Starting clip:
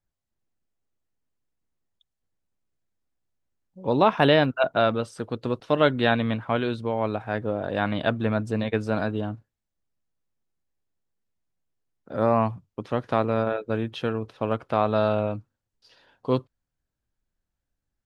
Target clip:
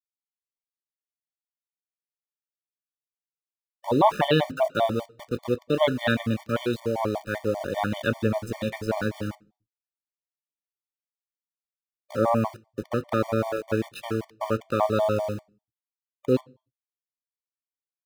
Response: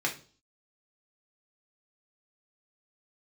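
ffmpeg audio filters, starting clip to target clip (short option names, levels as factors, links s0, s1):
-filter_complex "[0:a]aeval=exprs='val(0)*gte(abs(val(0)),0.0178)':c=same,adynamicequalizer=threshold=0.02:dfrequency=1700:dqfactor=0.74:tfrequency=1700:tqfactor=0.74:attack=5:release=100:ratio=0.375:range=2.5:mode=cutabove:tftype=bell,asplit=2[s0][s1];[1:a]atrim=start_sample=2205,asetrate=48510,aresample=44100[s2];[s1][s2]afir=irnorm=-1:irlink=0,volume=0.168[s3];[s0][s3]amix=inputs=2:normalize=0,afftfilt=real='re*gt(sin(2*PI*5.1*pts/sr)*(1-2*mod(floor(b*sr/1024/600),2)),0)':imag='im*gt(sin(2*PI*5.1*pts/sr)*(1-2*mod(floor(b*sr/1024/600),2)),0)':win_size=1024:overlap=0.75,volume=1.12"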